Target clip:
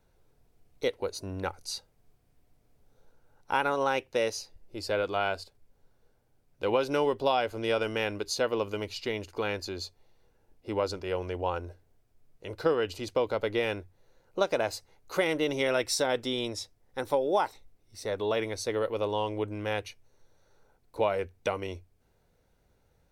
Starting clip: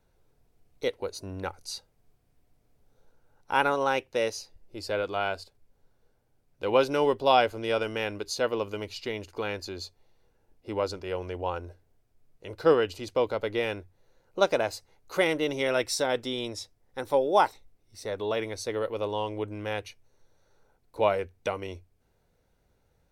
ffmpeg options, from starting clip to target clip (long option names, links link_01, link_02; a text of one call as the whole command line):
ffmpeg -i in.wav -af "acompressor=threshold=-23dB:ratio=6,volume=1dB" out.wav